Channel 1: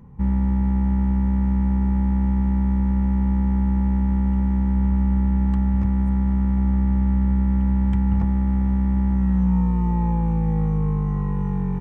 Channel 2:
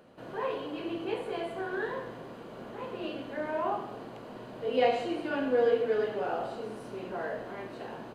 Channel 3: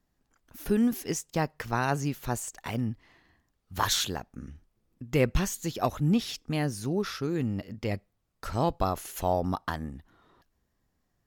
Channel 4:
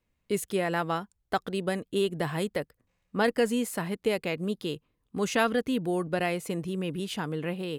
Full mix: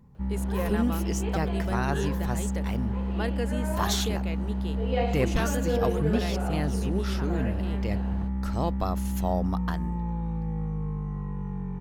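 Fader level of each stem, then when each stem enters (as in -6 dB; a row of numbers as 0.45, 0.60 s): -9.5, -3.0, -2.5, -7.5 dB; 0.00, 0.15, 0.00, 0.00 s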